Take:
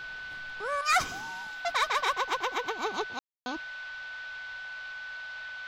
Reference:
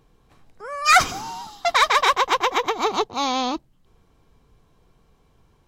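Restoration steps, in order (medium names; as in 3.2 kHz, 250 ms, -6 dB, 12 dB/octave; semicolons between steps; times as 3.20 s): band-stop 1.5 kHz, Q 30; room tone fill 3.19–3.46 s; noise print and reduce 19 dB; trim 0 dB, from 0.81 s +10.5 dB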